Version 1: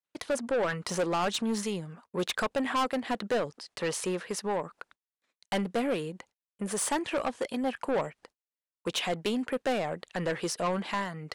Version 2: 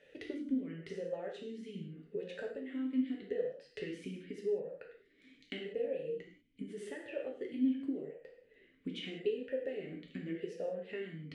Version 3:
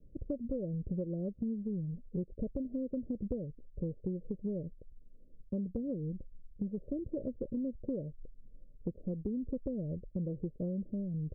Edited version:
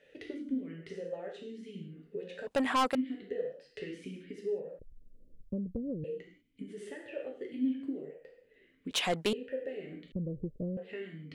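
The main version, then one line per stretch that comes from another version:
2
2.47–2.95 from 1
4.79–6.04 from 3
8.91–9.33 from 1
10.12–10.77 from 3

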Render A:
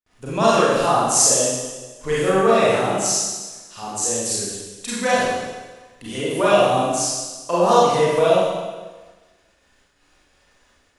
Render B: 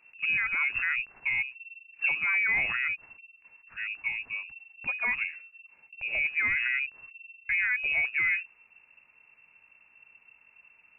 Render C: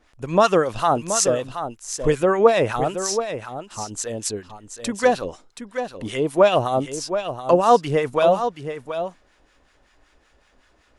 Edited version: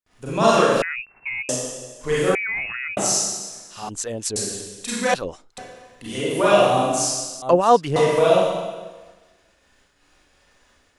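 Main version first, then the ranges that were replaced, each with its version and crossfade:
A
0.82–1.49 from B
2.35–2.97 from B
3.89–4.36 from C
5.14–5.58 from C
7.42–7.96 from C

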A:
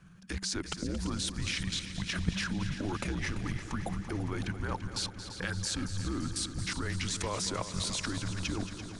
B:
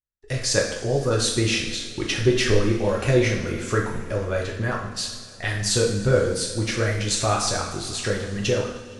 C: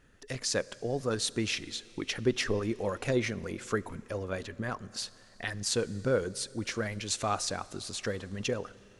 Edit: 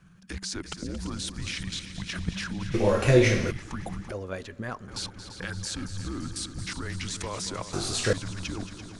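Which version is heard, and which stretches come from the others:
A
2.74–3.51 from B
4.12–4.88 from C
7.73–8.13 from B

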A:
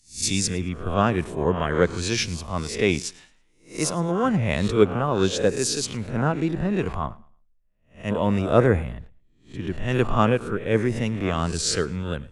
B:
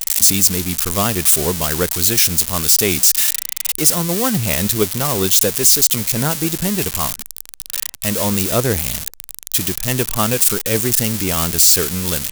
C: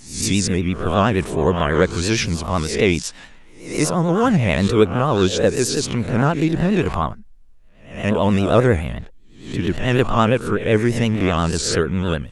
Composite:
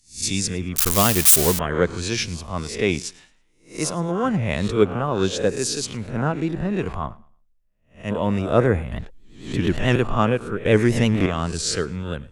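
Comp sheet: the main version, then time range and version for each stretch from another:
A
0.76–1.59 from B
8.92–9.96 from C
10.65–11.26 from C

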